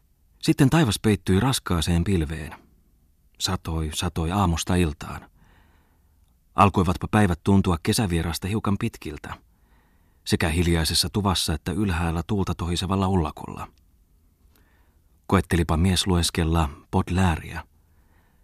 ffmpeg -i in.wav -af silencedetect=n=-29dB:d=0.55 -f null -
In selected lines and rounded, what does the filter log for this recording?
silence_start: 2.53
silence_end: 3.41 | silence_duration: 0.87
silence_start: 5.18
silence_end: 6.57 | silence_duration: 1.39
silence_start: 9.34
silence_end: 10.27 | silence_duration: 0.93
silence_start: 13.64
silence_end: 15.30 | silence_duration: 1.65
silence_start: 17.60
silence_end: 18.44 | silence_duration: 0.83